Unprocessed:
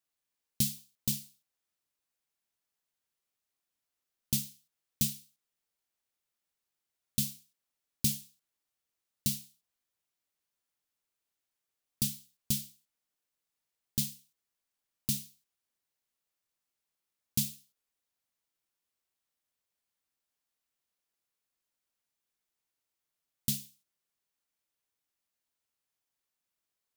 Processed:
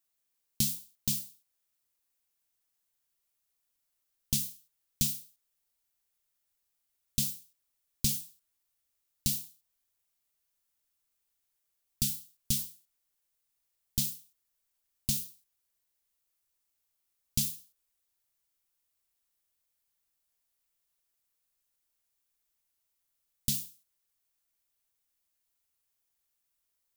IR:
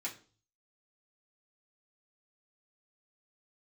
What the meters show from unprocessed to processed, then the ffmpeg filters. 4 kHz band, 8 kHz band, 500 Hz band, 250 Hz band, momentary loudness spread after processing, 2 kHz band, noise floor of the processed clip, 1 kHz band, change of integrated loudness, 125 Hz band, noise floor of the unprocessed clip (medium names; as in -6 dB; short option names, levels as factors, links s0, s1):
+2.0 dB, +2.5 dB, -0.5 dB, -1.5 dB, 14 LU, +1.0 dB, -81 dBFS, no reading, +1.5 dB, 0.0 dB, under -85 dBFS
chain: -filter_complex "[0:a]asubboost=boost=3:cutoff=86,crystalizer=i=1:c=0,acrossover=split=8200[s0][s1];[s1]acompressor=threshold=0.0447:ratio=4:attack=1:release=60[s2];[s0][s2]amix=inputs=2:normalize=0"